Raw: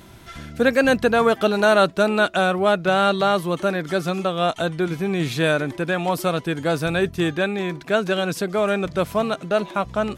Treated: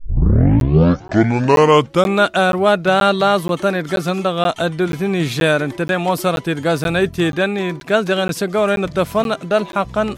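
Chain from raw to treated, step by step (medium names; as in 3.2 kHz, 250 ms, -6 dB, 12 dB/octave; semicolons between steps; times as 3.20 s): tape start-up on the opening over 2.28 s; crackling interface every 0.48 s, samples 512, zero, from 0.60 s; trim +4.5 dB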